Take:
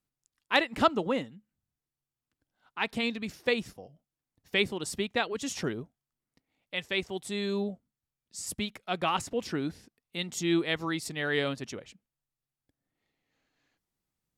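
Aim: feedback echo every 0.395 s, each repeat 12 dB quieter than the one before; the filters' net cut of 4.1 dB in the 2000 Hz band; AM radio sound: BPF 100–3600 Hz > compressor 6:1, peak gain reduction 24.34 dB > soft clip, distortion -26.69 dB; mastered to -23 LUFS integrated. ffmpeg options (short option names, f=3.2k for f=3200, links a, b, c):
-af "highpass=100,lowpass=3.6k,equalizer=f=2k:t=o:g=-4.5,aecho=1:1:395|790|1185:0.251|0.0628|0.0157,acompressor=threshold=-45dB:ratio=6,asoftclip=threshold=-32.5dB,volume=26.5dB"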